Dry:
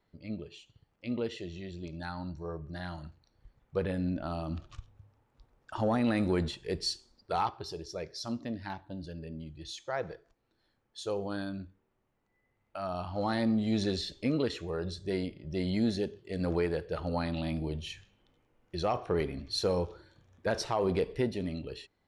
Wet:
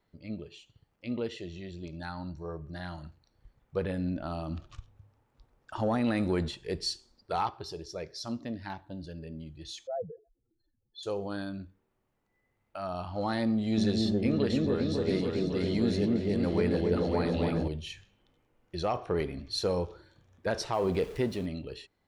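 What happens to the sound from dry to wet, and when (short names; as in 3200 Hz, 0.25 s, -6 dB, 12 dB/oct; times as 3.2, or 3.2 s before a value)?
9.87–11.03 spectral contrast raised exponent 3.4
13.5–17.68 repeats that get brighter 0.276 s, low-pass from 750 Hz, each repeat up 1 oct, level 0 dB
20.73–21.46 zero-crossing step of -44.5 dBFS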